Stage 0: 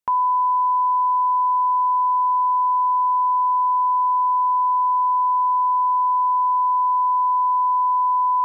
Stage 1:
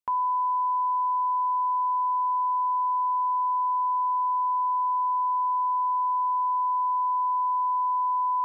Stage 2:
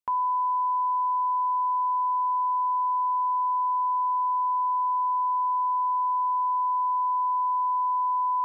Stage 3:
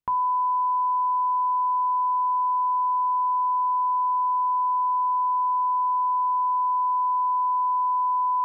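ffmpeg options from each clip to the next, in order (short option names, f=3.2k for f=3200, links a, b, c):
-af "bandreject=f=60:t=h:w=6,bandreject=f=120:t=h:w=6,bandreject=f=180:t=h:w=6,bandreject=f=240:t=h:w=6,volume=-6.5dB"
-af anull
-af "bass=f=250:g=12,treble=f=4k:g=-6,volume=2dB"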